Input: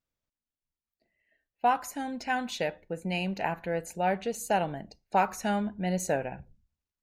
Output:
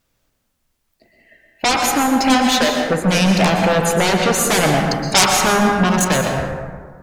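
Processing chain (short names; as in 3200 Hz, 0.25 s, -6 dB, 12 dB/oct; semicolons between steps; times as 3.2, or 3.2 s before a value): 2.3–2.85 HPF 120 Hz -> 430 Hz 24 dB/oct; in parallel at -3 dB: sine folder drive 18 dB, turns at -12 dBFS; 4.63–5.3 on the sum: high shelf 3200 Hz +10.5 dB; 5.88–6.37 level quantiser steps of 18 dB; plate-style reverb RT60 1.7 s, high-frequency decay 0.4×, pre-delay 0.105 s, DRR 2 dB; gain +1 dB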